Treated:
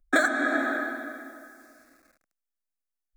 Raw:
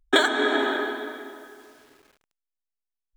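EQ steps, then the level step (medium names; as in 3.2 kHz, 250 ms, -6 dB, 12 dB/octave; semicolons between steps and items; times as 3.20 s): static phaser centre 620 Hz, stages 8; 0.0 dB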